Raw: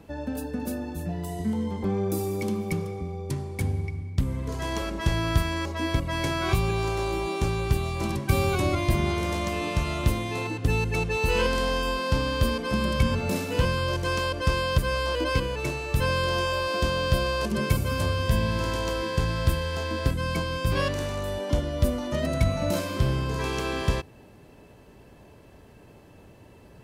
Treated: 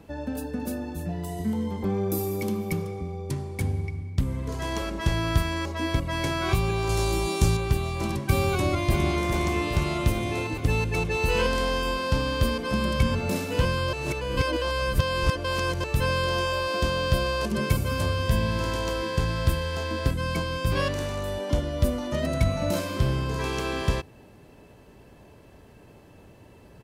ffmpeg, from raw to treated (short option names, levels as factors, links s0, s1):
-filter_complex "[0:a]asettb=1/sr,asplit=3[s0][s1][s2];[s0]atrim=end=1.374[s3];[s1]atrim=start=1.37:end=2.83,asetpts=PTS-STARTPTS,afade=t=in:d=0.004:c=qsin,afade=t=out:st=1.456:d=0.004:c=qsin,equalizer=f=13000:t=o:w=0.21:g=10.5[s4];[s2]atrim=start=2.826[s5];[s3][s4]acrossfade=d=0.004:c1=hsin:c2=qsin[s6];[s6][s5]acrossfade=d=0.004:c1=qsin:c2=hsin,asettb=1/sr,asplit=3[s7][s8][s9];[s7]atrim=end=6.894[s10];[s8]atrim=start=6.89:end=7.57,asetpts=PTS-STARTPTS,afade=t=in:d=0.004:c=qsin,afade=t=out:st=0.676:d=0.004:c=qsin,bass=f=250:g=6,treble=f=4000:g=11[s11];[s9]atrim=start=7.566[s12];[s10][s11]acrossfade=d=0.004:c1=hsin:c2=qsin[s13];[s13][s12]acrossfade=d=0.004:c1=qsin:c2=hsin,asplit=2[s14][s15];[s15]afade=t=in:st=8.5:d=0.01,afade=t=out:st=9.21:d=0.01,aecho=0:1:410|820|1230|1640|2050|2460|2870|3280|3690|4100|4510|4920:0.421697|0.316272|0.237204|0.177903|0.133427|0.100071|0.0750529|0.0562897|0.0422173|0.0316629|0.0237472|0.0178104[s16];[s14][s16]amix=inputs=2:normalize=0,asplit=3[s17][s18][s19];[s17]atrim=end=13.932[s20];[s18]atrim=start=13.928:end=15.842,asetpts=PTS-STARTPTS,areverse[s21];[s19]atrim=start=15.838[s22];[s20][s21]acrossfade=d=0.004:c1=hsin:c2=hsin[s23];[s23][s22]acrossfade=d=0.004:c1=hsin:c2=hsin"